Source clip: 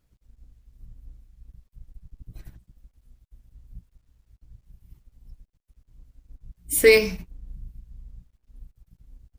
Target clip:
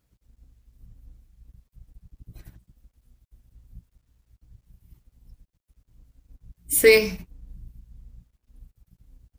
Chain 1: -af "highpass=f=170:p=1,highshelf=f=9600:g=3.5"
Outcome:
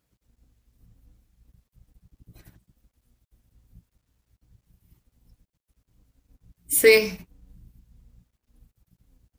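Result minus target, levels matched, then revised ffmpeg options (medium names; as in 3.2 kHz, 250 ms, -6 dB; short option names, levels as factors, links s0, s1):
125 Hz band -4.0 dB
-af "highpass=f=45:p=1,highshelf=f=9600:g=3.5"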